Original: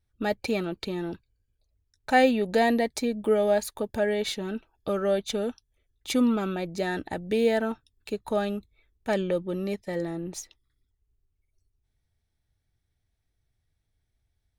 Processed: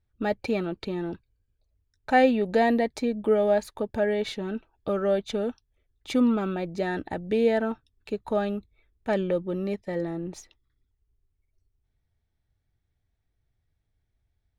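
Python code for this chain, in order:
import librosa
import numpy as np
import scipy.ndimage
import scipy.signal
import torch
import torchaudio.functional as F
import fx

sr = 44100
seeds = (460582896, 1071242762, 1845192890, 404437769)

y = fx.lowpass(x, sr, hz=2400.0, slope=6)
y = y * 10.0 ** (1.0 / 20.0)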